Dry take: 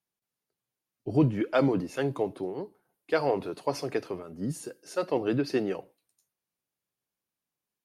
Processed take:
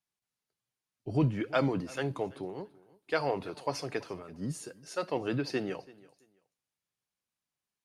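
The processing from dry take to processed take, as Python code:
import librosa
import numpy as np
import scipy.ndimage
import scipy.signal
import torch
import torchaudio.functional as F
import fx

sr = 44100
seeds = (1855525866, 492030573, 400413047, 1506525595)

y = scipy.signal.sosfilt(scipy.signal.butter(2, 10000.0, 'lowpass', fs=sr, output='sos'), x)
y = fx.peak_eq(y, sr, hz=370.0, db=-6.0, octaves=2.1)
y = fx.echo_feedback(y, sr, ms=333, feedback_pct=21, wet_db=-22)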